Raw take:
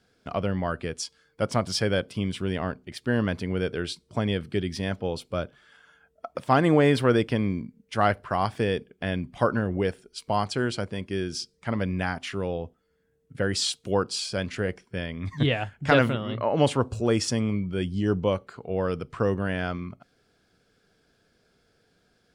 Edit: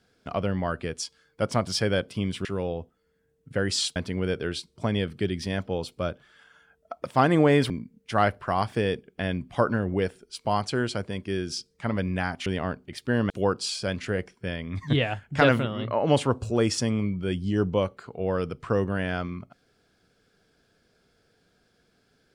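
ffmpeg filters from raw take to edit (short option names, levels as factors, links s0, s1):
-filter_complex "[0:a]asplit=6[s0][s1][s2][s3][s4][s5];[s0]atrim=end=2.452[s6];[s1]atrim=start=12.288:end=13.802[s7];[s2]atrim=start=3.288:end=7.032[s8];[s3]atrim=start=7.528:end=12.292[s9];[s4]atrim=start=2.448:end=3.292[s10];[s5]atrim=start=13.798[s11];[s6][s7]acrossfade=d=0.004:c1=hsin:c2=hsin[s12];[s12][s8]acrossfade=d=0.004:c1=hsin:c2=hsin[s13];[s13][s9]acrossfade=d=0.004:c1=hsin:c2=hsin[s14];[s14][s10]acrossfade=d=0.004:c1=hsin:c2=hsin[s15];[s15][s11]acrossfade=d=0.004:c1=hsin:c2=hsin"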